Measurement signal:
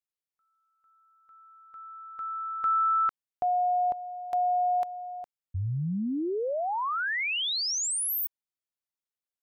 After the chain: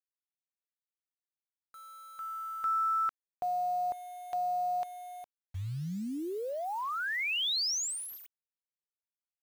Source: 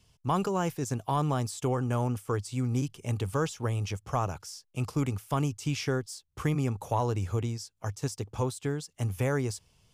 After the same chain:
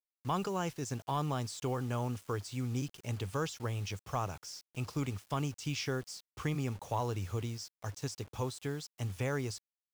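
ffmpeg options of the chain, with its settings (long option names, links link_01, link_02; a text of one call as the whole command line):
ffmpeg -i in.wav -af "lowpass=5600,highshelf=frequency=2700:gain=9,acrusher=bits=7:mix=0:aa=0.000001,volume=-6.5dB" out.wav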